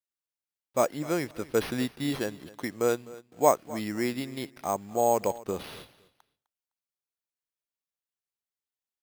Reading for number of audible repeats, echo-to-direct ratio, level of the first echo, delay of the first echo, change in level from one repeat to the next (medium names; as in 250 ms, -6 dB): 2, -19.5 dB, -19.5 dB, 255 ms, -13.5 dB